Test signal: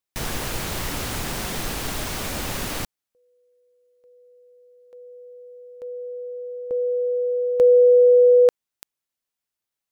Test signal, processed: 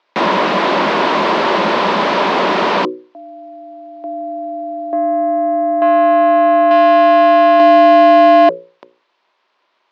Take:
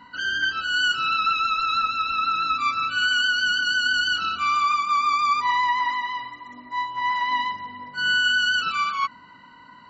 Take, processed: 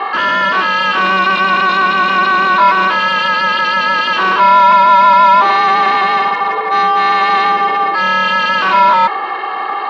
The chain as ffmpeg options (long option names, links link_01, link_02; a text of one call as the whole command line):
ffmpeg -i in.wav -filter_complex "[0:a]bandreject=frequency=60:width_type=h:width=6,bandreject=frequency=120:width_type=h:width=6,bandreject=frequency=180:width_type=h:width=6,bandreject=frequency=240:width_type=h:width=6,bandreject=frequency=300:width_type=h:width=6,bandreject=frequency=360:width_type=h:width=6,acontrast=55,aeval=exprs='val(0)*sin(2*PI*190*n/s)':channel_layout=same,asplit=2[link_01][link_02];[link_02]highpass=frequency=720:poles=1,volume=35dB,asoftclip=type=tanh:threshold=-5dB[link_03];[link_01][link_03]amix=inputs=2:normalize=0,lowpass=frequency=2200:poles=1,volume=-6dB,highpass=frequency=190:width=0.5412,highpass=frequency=190:width=1.3066,equalizer=frequency=370:width_type=q:width=4:gain=7,equalizer=frequency=600:width_type=q:width=4:gain=7,equalizer=frequency=1000:width_type=q:width=4:gain=10,lowpass=frequency=4400:width=0.5412,lowpass=frequency=4400:width=1.3066,volume=-2dB" out.wav